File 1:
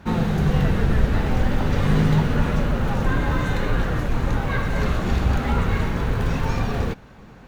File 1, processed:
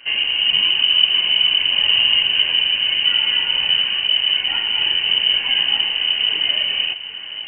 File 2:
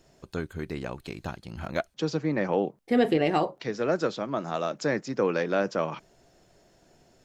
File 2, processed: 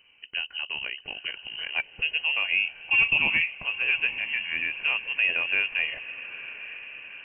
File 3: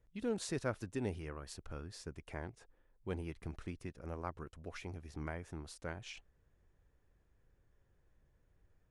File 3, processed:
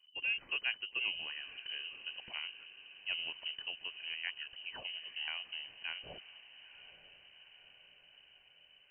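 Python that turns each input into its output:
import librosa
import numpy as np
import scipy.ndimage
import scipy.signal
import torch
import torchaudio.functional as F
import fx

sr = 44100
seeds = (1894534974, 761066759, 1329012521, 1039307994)

y = fx.notch(x, sr, hz=1700.0, q=7.2)
y = fx.echo_diffused(y, sr, ms=903, feedback_pct=61, wet_db=-14.5)
y = fx.freq_invert(y, sr, carrier_hz=3000)
y = fx.dynamic_eq(y, sr, hz=1400.0, q=2.2, threshold_db=-39.0, ratio=4.0, max_db=-5)
y = F.gain(torch.from_numpy(y), 1.0).numpy()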